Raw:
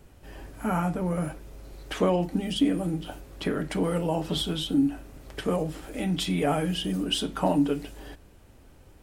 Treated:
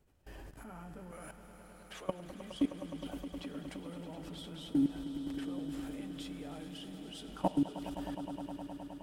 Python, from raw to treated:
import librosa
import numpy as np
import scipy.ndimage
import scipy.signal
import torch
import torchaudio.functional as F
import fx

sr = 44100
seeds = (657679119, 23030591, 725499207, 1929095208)

y = fx.highpass(x, sr, hz=1000.0, slope=6, at=(1.11, 2.08))
y = fx.level_steps(y, sr, step_db=22)
y = fx.echo_swell(y, sr, ms=104, loudest=5, wet_db=-13.5)
y = y * 10.0 ** (-4.5 / 20.0)